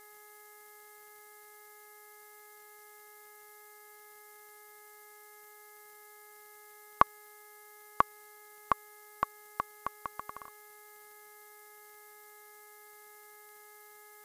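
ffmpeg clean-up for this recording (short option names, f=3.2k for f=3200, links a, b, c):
-af "adeclick=t=4,bandreject=f=419.7:t=h:w=4,bandreject=f=839.4:t=h:w=4,bandreject=f=1.2591k:t=h:w=4,bandreject=f=1.6788k:t=h:w=4,bandreject=f=2.0985k:t=h:w=4,afftdn=nr=30:nf=-55"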